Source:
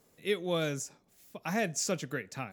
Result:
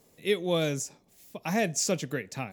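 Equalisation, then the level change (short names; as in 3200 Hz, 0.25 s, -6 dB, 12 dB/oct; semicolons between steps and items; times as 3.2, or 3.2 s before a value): bell 1400 Hz -6.5 dB 0.59 oct; +4.5 dB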